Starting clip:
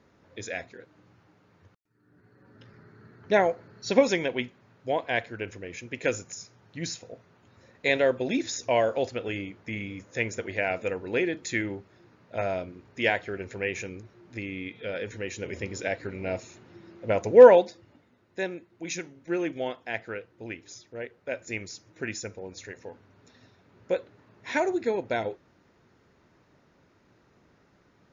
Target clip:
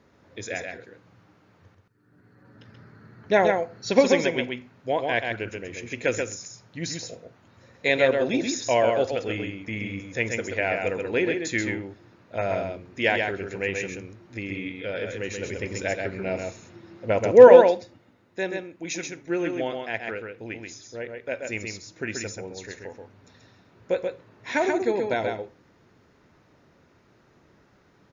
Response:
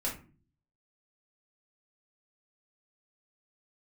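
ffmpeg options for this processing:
-filter_complex "[0:a]aecho=1:1:132:0.596,asplit=2[a][b];[1:a]atrim=start_sample=2205,adelay=45[c];[b][c]afir=irnorm=-1:irlink=0,volume=-24.5dB[d];[a][d]amix=inputs=2:normalize=0,volume=2dB"

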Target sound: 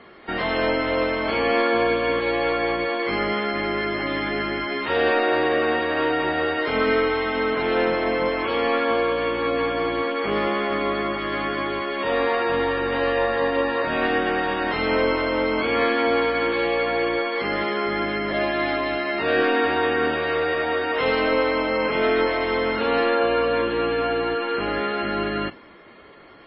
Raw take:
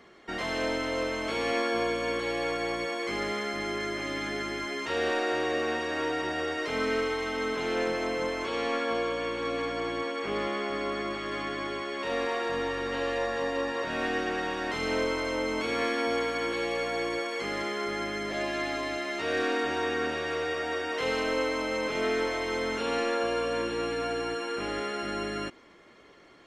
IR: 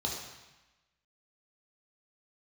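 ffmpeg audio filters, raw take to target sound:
-filter_complex "[0:a]lowpass=3.6k,asplit=2[a][b];[1:a]atrim=start_sample=2205,asetrate=70560,aresample=44100[c];[b][c]afir=irnorm=-1:irlink=0,volume=-21dB[d];[a][d]amix=inputs=2:normalize=0,volume=8.5dB" -ar 12000 -c:a libmp3lame -b:a 16k

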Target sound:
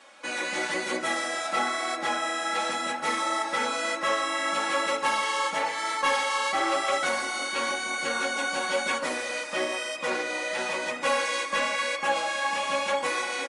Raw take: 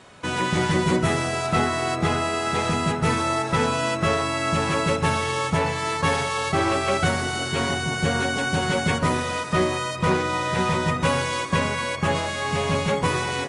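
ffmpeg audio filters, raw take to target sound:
-filter_complex "[0:a]highpass=500,aecho=1:1:3.6:0.89,asplit=2[a][b];[b]volume=16.5dB,asoftclip=hard,volume=-16.5dB,volume=-10dB[c];[a][c]amix=inputs=2:normalize=0,flanger=delay=6.7:depth=8.3:regen=-45:speed=1:shape=triangular,volume=-3dB"

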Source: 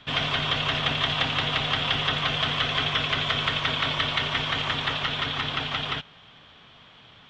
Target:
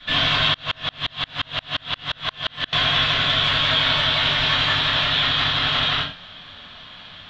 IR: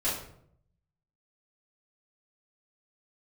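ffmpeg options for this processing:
-filter_complex "[0:a]equalizer=f=400:t=o:w=0.67:g=-5,equalizer=f=1.6k:t=o:w=0.67:g=6,equalizer=f=4k:t=o:w=0.67:g=10,alimiter=limit=-15dB:level=0:latency=1:release=66[a];[1:a]atrim=start_sample=2205,atrim=end_sample=6174[b];[a][b]afir=irnorm=-1:irlink=0,asettb=1/sr,asplit=3[c][d][e];[c]atrim=end=0.544[f];[d]atrim=start=0.54:end=2.73,asetpts=PTS-STARTPTS,afade=t=in:d=0.004:c=qsin,afade=t=out:st=2.186:d=0.004:c=qsin,aeval=exprs='val(0)*pow(10,-36*if(lt(mod(-5.7*n/s,1),2*abs(-5.7)/1000),1-mod(-5.7*n/s,1)/(2*abs(-5.7)/1000),(mod(-5.7*n/s,1)-2*abs(-5.7)/1000)/(1-2*abs(-5.7)/1000))/20)':c=same[g];[e]atrim=start=2.726[h];[f][g]acrossfade=d=0.004:c1=hsin:c2=qsin[i];[i][h]acrossfade=d=0.004:c1=qsin:c2=hsin,volume=-1.5dB"

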